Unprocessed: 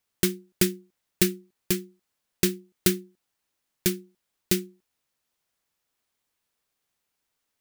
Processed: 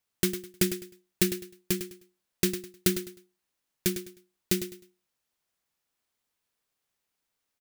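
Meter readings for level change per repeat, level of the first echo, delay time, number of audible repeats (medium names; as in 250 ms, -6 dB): -11.5 dB, -10.5 dB, 103 ms, 3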